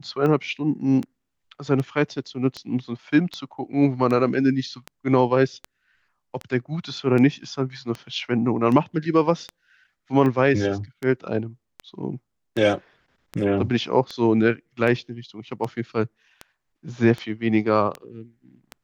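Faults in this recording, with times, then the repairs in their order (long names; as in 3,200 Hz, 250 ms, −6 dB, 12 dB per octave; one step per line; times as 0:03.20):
scratch tick 78 rpm −17 dBFS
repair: click removal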